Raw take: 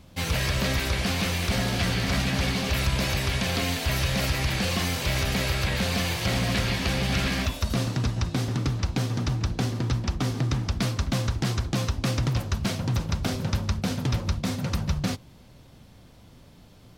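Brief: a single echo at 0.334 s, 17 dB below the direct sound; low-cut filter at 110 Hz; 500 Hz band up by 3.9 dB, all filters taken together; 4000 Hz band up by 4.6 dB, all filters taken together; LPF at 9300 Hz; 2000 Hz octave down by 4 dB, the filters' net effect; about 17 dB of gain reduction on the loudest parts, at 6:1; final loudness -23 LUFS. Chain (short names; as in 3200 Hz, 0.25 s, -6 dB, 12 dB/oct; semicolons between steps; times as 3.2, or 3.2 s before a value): HPF 110 Hz; LPF 9300 Hz; bell 500 Hz +5 dB; bell 2000 Hz -8 dB; bell 4000 Hz +8 dB; compressor 6:1, threshold -41 dBFS; echo 0.334 s -17 dB; gain +19.5 dB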